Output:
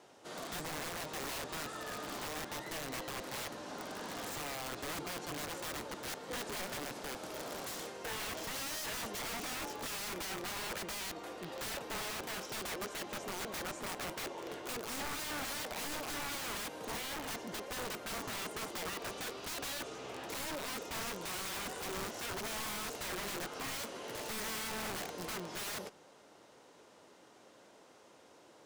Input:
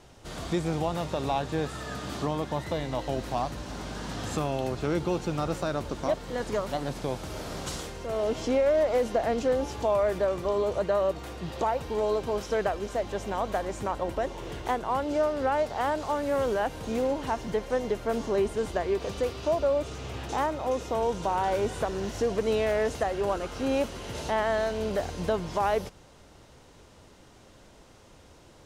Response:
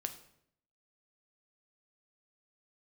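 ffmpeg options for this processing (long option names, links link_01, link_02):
-filter_complex "[0:a]highpass=300,aeval=exprs='(mod(33.5*val(0)+1,2)-1)/33.5':channel_layout=same,asplit=2[link_01][link_02];[1:a]atrim=start_sample=2205,lowpass=2400[link_03];[link_02][link_03]afir=irnorm=-1:irlink=0,volume=-8.5dB[link_04];[link_01][link_04]amix=inputs=2:normalize=0,volume=-5.5dB"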